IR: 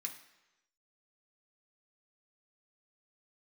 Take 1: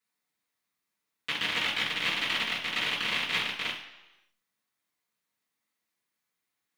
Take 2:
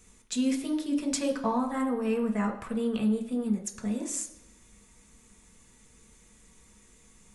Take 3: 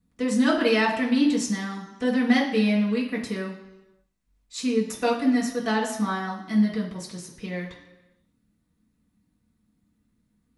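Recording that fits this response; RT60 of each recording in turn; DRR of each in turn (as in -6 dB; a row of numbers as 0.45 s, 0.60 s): 2; 1.0 s, 1.0 s, 1.0 s; -11.5 dB, 1.0 dB, -6.5 dB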